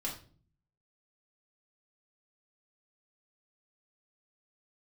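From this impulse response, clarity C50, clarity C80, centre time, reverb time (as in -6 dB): 7.5 dB, 12.5 dB, 25 ms, 0.45 s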